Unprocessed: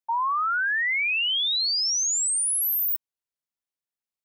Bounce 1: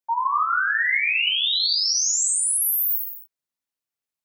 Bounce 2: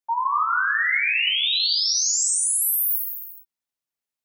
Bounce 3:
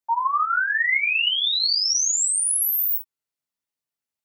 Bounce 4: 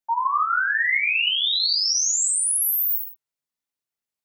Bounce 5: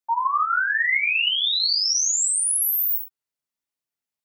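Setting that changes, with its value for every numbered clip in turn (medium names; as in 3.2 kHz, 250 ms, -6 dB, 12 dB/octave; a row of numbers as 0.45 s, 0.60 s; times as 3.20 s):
gated-style reverb, gate: 320 ms, 500 ms, 90 ms, 210 ms, 140 ms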